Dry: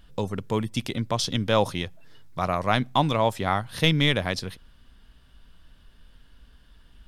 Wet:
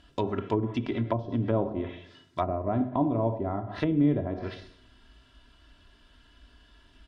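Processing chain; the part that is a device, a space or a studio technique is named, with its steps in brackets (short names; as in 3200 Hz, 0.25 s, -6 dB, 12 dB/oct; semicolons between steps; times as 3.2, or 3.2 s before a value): HPF 120 Hz 6 dB/oct; microphone above a desk (comb 3 ms, depth 65%; reverb RT60 0.65 s, pre-delay 18 ms, DRR 7 dB); treble ducked by the level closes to 450 Hz, closed at -21 dBFS; LPF 7400 Hz 12 dB/oct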